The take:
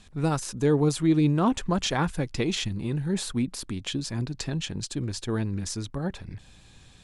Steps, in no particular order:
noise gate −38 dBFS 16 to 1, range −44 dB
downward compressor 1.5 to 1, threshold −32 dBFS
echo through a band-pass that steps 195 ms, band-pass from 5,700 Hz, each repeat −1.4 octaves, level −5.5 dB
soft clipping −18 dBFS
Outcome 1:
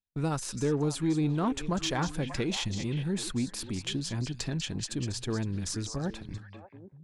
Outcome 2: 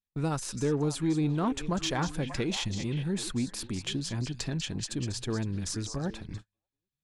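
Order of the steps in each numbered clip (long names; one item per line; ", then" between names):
noise gate, then echo through a band-pass that steps, then downward compressor, then soft clipping
echo through a band-pass that steps, then noise gate, then downward compressor, then soft clipping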